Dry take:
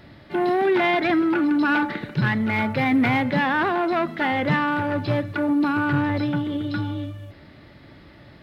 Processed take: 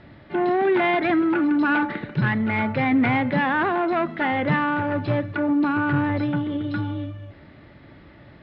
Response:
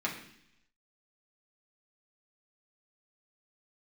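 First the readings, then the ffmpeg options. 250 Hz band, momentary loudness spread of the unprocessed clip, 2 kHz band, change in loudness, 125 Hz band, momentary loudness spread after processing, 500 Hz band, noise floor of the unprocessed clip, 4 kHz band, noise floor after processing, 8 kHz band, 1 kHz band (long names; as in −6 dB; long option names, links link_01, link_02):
0.0 dB, 7 LU, −0.5 dB, 0.0 dB, 0.0 dB, 7 LU, 0.0 dB, −48 dBFS, −4.0 dB, −48 dBFS, can't be measured, 0.0 dB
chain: -af "lowpass=3000"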